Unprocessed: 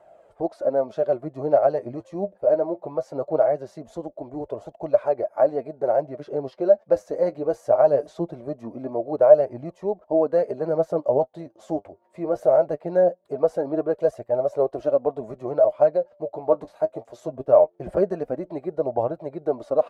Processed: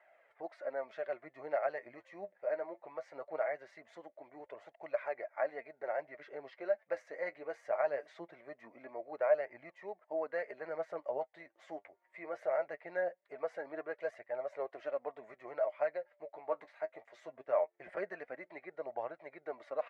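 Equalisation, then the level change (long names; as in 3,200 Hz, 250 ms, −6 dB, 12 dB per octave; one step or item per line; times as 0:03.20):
resonant band-pass 2,000 Hz, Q 5.8
+8.5 dB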